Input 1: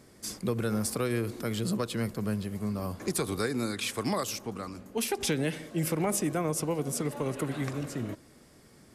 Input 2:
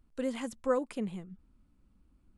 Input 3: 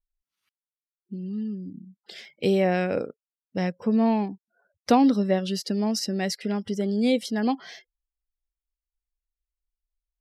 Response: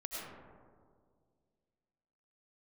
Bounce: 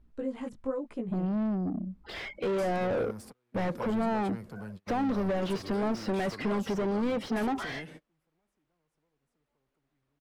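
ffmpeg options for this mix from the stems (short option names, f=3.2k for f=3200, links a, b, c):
-filter_complex "[0:a]agate=range=-20dB:threshold=-49dB:ratio=16:detection=peak,acompressor=threshold=-37dB:ratio=4,asoftclip=type=tanh:threshold=-36dB,adelay=2350,volume=0dB[a];[1:a]tiltshelf=f=970:g=4.5,acompressor=threshold=-30dB:ratio=6,flanger=delay=16.5:depth=3.5:speed=1,volume=3dB[b];[2:a]acompressor=threshold=-24dB:ratio=6,asplit=2[c][d];[d]highpass=f=720:p=1,volume=34dB,asoftclip=type=tanh:threshold=-16dB[e];[c][e]amix=inputs=2:normalize=0,lowpass=f=1.5k:p=1,volume=-6dB,volume=-6dB,asplit=2[f][g];[g]apad=whole_len=497978[h];[a][h]sidechaingate=range=-37dB:threshold=-58dB:ratio=16:detection=peak[i];[i][b][f]amix=inputs=3:normalize=0,highshelf=f=3.4k:g=-10.5"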